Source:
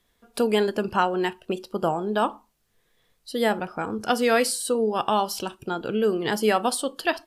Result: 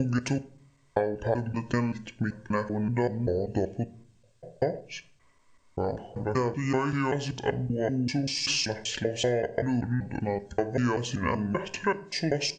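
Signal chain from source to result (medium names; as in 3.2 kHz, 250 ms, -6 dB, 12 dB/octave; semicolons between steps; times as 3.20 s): slices played last to first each 111 ms, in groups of 5; comb 1.1 ms, depth 33%; compression, threshold -23 dBFS, peak gain reduction 7.5 dB; simulated room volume 230 m³, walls furnished, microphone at 0.33 m; speed mistake 78 rpm record played at 45 rpm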